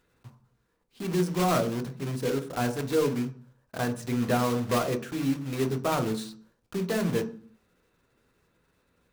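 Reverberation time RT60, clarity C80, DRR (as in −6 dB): 0.45 s, 18.5 dB, 6.0 dB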